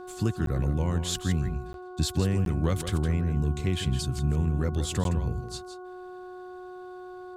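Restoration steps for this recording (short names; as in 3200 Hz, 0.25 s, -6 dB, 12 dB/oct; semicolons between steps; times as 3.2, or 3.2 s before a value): de-hum 365.4 Hz, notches 4; interpolate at 0.46/1.73/2.45/5.04, 12 ms; inverse comb 0.163 s -10 dB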